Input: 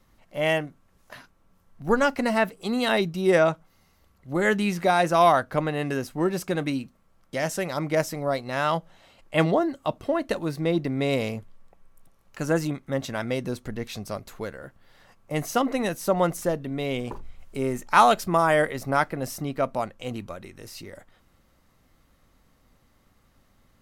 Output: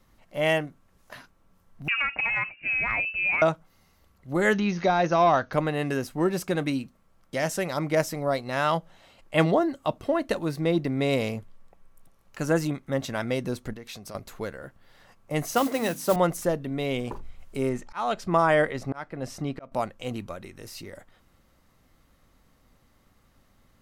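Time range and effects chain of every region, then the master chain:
1.88–3.42 inverted band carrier 2800 Hz + compressor, threshold -22 dBFS
4.53–5.53 high shelf 2500 Hz +9.5 dB + de-esser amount 80% + brick-wall FIR low-pass 6700 Hz
13.73–14.15 compressor, threshold -35 dBFS + low shelf 200 Hz -6.5 dB
15.54–16.16 HPF 94 Hz + notches 50/100/150/200/250/300 Hz + modulation noise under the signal 16 dB
17.69–19.72 auto swell 0.411 s + air absorption 67 m
whole clip: dry

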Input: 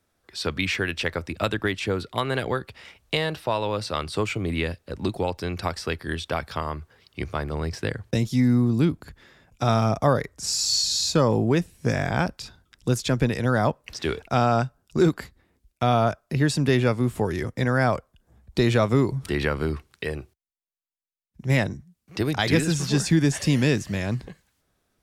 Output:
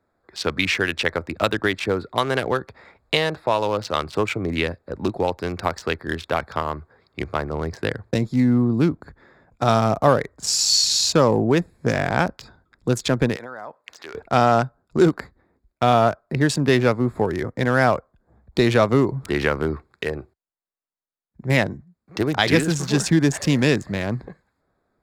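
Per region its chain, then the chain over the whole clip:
13.36–14.15 HPF 1200 Hz 6 dB/oct + compressor 12:1, threshold -33 dBFS
whole clip: Wiener smoothing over 15 samples; low shelf 200 Hz -8.5 dB; gain +6 dB

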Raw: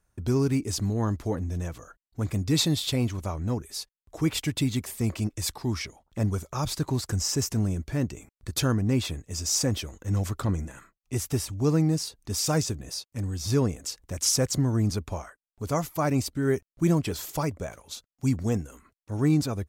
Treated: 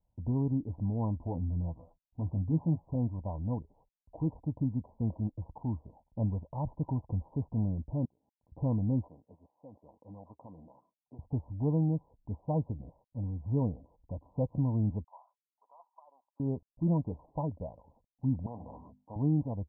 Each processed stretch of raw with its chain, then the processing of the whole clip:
1.15–2.95 bell 480 Hz -4 dB 0.62 oct + doubler 12 ms -7 dB
8.05–8.52 HPF 910 Hz 6 dB/oct + compressor 12:1, threshold -57 dBFS
9.08–11.19 weighting filter A + compressor 12:1, threshold -37 dBFS
15.04–16.4 HPF 1200 Hz 24 dB/oct + negative-ratio compressor -40 dBFS
18.46–19.16 HPF 65 Hz 24 dB/oct + notches 50/100/150/200/250 Hz + spectral compressor 4:1
whole clip: Chebyshev low-pass 1000 Hz, order 8; bell 380 Hz -14 dB 0.29 oct; gain -4 dB

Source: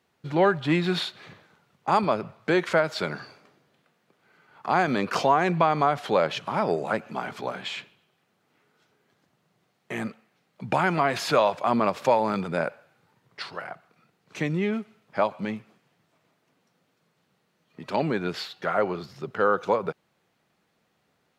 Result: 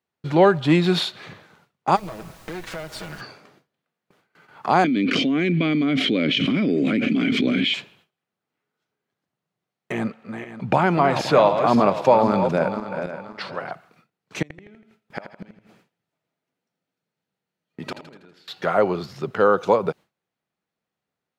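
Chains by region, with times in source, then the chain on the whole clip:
1.95–3.2 minimum comb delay 6.2 ms + compressor 4:1, threshold -39 dBFS + added noise pink -55 dBFS
4.84–7.74 vowel filter i + low shelf 150 Hz +7 dB + fast leveller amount 100%
9.92–13.71 regenerating reverse delay 0.262 s, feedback 50%, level -8 dB + LPF 2800 Hz 6 dB/oct
14.42–18.48 notch 1100 Hz, Q 8.7 + flipped gate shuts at -25 dBFS, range -29 dB + feedback echo 81 ms, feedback 51%, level -10 dB
whole clip: dynamic EQ 1700 Hz, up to -5 dB, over -39 dBFS, Q 1.1; gate with hold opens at -50 dBFS; gain +6.5 dB

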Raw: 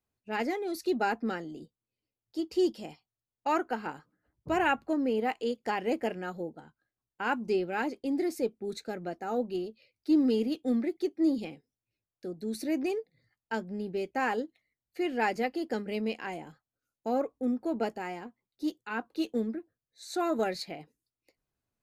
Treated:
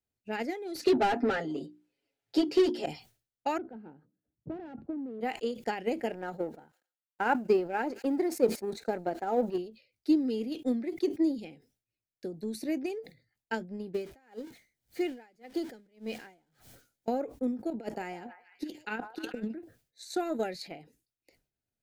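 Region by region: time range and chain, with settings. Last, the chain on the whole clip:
0.75–2.86 notches 60/120/180/240/300/360 Hz + comb 7.3 ms, depth 95% + overdrive pedal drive 24 dB, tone 1500 Hz, clips at -13.5 dBFS
3.58–5.21 hard clip -29.5 dBFS + band-pass 210 Hz, Q 0.84 + air absorption 78 m
6.11–9.58 G.711 law mismatch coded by A + EQ curve 130 Hz 0 dB, 890 Hz +9 dB, 3100 Hz -2 dB + thin delay 89 ms, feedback 59%, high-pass 4700 Hz, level -21 dB
13.94–17.08 zero-crossing step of -42 dBFS + notch 2700 Hz, Q 14 + dB-linear tremolo 1.8 Hz, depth 31 dB
17.7–19.53 negative-ratio compressor -33 dBFS, ratio -0.5 + delay with a stepping band-pass 0.148 s, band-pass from 840 Hz, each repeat 0.7 oct, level -9 dB
whole clip: bell 1100 Hz -12.5 dB 0.32 oct; transient shaper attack +8 dB, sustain 0 dB; sustainer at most 150 dB/s; gain -5 dB

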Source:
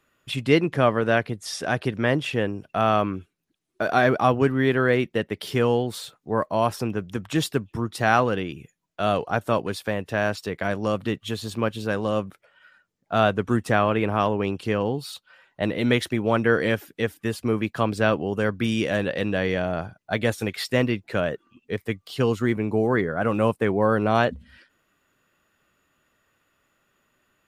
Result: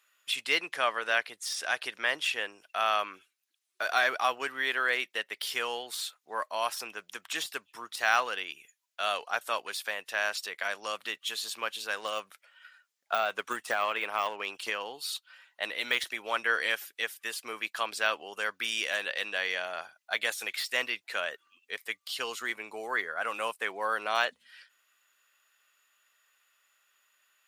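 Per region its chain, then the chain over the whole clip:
11.97–14.7 de-esser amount 95% + transient shaper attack +7 dB, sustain +1 dB
whole clip: HPF 700 Hz 12 dB/oct; tilt shelf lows -7.5 dB, about 1300 Hz; de-esser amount 55%; gain -3 dB

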